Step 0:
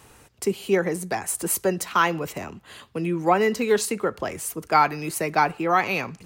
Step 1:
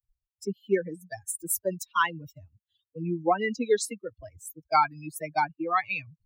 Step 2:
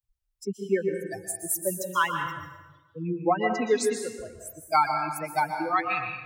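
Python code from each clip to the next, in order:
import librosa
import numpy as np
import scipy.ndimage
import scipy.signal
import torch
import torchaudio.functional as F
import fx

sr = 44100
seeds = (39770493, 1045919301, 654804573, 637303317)

y1 = fx.bin_expand(x, sr, power=3.0)
y2 = fx.rev_plate(y1, sr, seeds[0], rt60_s=1.1, hf_ratio=0.8, predelay_ms=110, drr_db=4.0)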